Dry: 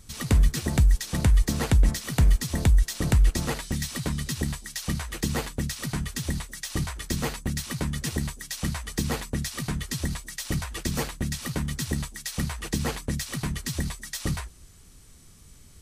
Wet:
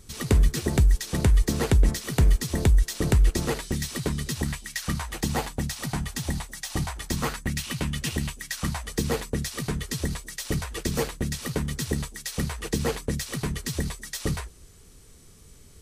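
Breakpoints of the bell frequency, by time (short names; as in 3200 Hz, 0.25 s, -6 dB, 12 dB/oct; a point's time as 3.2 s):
bell +8 dB 0.56 oct
4.3 s 400 Hz
4.6 s 3200 Hz
5.08 s 790 Hz
7.09 s 790 Hz
7.62 s 2800 Hz
8.37 s 2800 Hz
8.95 s 440 Hz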